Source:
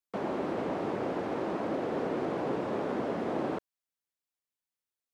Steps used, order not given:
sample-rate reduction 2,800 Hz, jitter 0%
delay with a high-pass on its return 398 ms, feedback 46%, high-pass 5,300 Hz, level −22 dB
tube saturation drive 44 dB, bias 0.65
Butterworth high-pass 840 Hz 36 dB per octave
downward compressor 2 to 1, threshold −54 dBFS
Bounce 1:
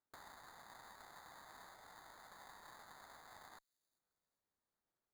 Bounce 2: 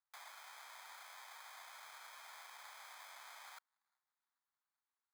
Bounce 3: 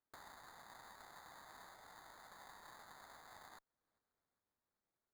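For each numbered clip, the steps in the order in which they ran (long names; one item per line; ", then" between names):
downward compressor, then Butterworth high-pass, then tube saturation, then sample-rate reduction, then delay with a high-pass on its return
tube saturation, then delay with a high-pass on its return, then sample-rate reduction, then Butterworth high-pass, then downward compressor
delay with a high-pass on its return, then downward compressor, then Butterworth high-pass, then tube saturation, then sample-rate reduction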